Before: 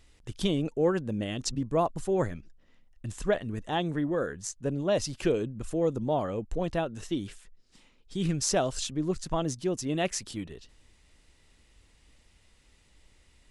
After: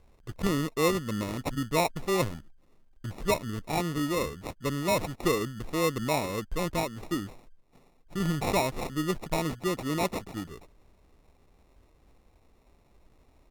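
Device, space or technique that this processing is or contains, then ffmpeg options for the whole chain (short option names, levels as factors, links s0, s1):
crushed at another speed: -af "asetrate=35280,aresample=44100,acrusher=samples=35:mix=1:aa=0.000001,asetrate=55125,aresample=44100"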